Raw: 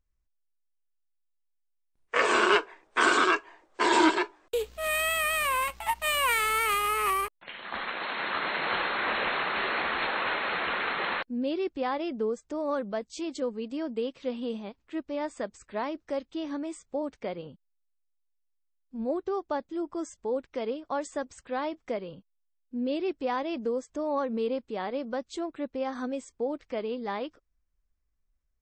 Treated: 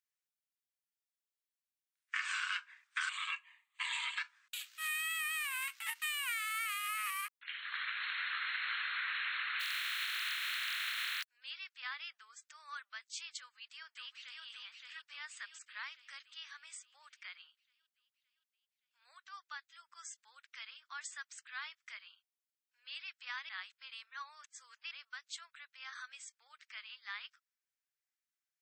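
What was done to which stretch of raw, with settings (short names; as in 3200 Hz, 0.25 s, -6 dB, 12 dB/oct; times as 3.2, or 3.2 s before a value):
3.09–4.18 fixed phaser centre 1500 Hz, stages 6
9.59–11.23 spectral contrast lowered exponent 0.29
13.38–14.44 echo throw 0.57 s, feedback 55%, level -2.5 dB
23.49–24.91 reverse
whole clip: steep high-pass 1400 Hz 36 dB/oct; compressor 5:1, threshold -34 dBFS; gain -1 dB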